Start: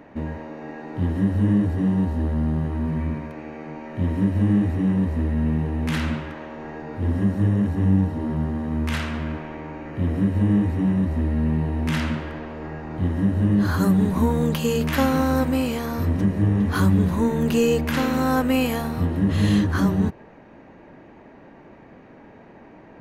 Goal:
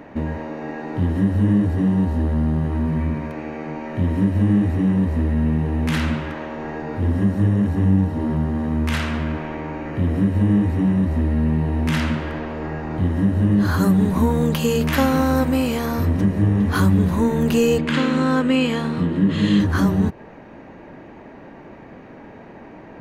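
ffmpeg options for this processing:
-filter_complex "[0:a]asplit=2[s0][s1];[s1]acompressor=threshold=0.0447:ratio=6,volume=0.944[s2];[s0][s2]amix=inputs=2:normalize=0,asettb=1/sr,asplit=3[s3][s4][s5];[s3]atrim=end=17.784[s6];[s4]atrim=start=17.78:end=19.6,asetpts=PTS-STARTPTS,afade=t=in:d=0.004:c=qsin,afade=t=out:st=1.816:d=0.004:c=qsin,highpass=160,equalizer=f=170:t=q:w=4:g=7,equalizer=f=330:t=q:w=4:g=3,equalizer=f=740:t=q:w=4:g=-9,equalizer=f=3200:t=q:w=4:g=4,equalizer=f=5700:t=q:w=4:g=-10,lowpass=f=7700:w=0.5412,lowpass=f=7700:w=1.3066[s7];[s5]atrim=start=19.596[s8];[s6][s7]acrossfade=d=0.004:c1=hsin:c2=qsin[s9];[s9][s8]acrossfade=d=0.004:c1=qsin:c2=hsin"

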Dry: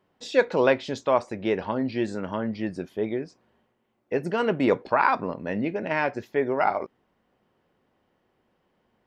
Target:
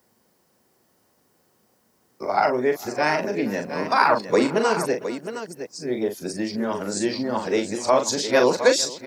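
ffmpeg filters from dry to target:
-filter_complex "[0:a]areverse,highpass=78,acrossover=split=170[s0][s1];[s0]acompressor=threshold=0.00398:ratio=6[s2];[s1]aexciter=amount=7.5:drive=5.8:freq=4500[s3];[s2][s3]amix=inputs=2:normalize=0,aecho=1:1:40|455|714:0.447|0.106|0.316,volume=1.33"

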